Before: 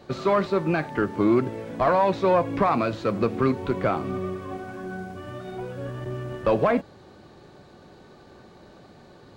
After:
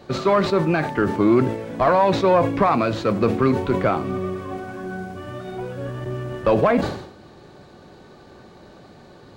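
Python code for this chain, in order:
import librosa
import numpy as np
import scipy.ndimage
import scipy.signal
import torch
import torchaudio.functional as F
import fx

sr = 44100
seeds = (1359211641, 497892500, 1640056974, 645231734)

y = fx.sustainer(x, sr, db_per_s=78.0)
y = y * librosa.db_to_amplitude(3.5)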